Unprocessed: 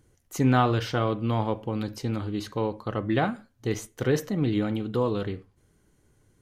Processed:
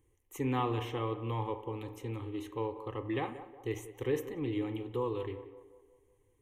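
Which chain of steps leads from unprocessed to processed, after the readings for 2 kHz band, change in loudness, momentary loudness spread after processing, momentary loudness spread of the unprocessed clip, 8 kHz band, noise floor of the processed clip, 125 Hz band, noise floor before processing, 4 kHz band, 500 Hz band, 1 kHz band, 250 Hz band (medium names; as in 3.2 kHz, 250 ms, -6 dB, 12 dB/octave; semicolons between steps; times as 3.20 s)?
-11.0 dB, -9.5 dB, 8 LU, 9 LU, -12.5 dB, -71 dBFS, -10.5 dB, -66 dBFS, -10.5 dB, -7.0 dB, -8.5 dB, -10.0 dB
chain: static phaser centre 970 Hz, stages 8; on a send: band-passed feedback delay 183 ms, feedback 53%, band-pass 630 Hz, level -11.5 dB; on the sum: spring tank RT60 1 s, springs 35 ms, chirp 35 ms, DRR 13.5 dB; trim -6 dB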